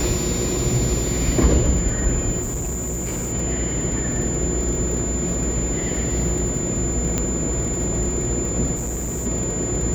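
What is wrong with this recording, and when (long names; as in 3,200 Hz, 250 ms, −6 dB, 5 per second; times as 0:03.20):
mains buzz 60 Hz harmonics 12 −28 dBFS
surface crackle 33 per second −26 dBFS
whistle 7,100 Hz −26 dBFS
0:02.41–0:03.33: clipping −22.5 dBFS
0:07.18: click −7 dBFS
0:08.75–0:09.27: clipping −23 dBFS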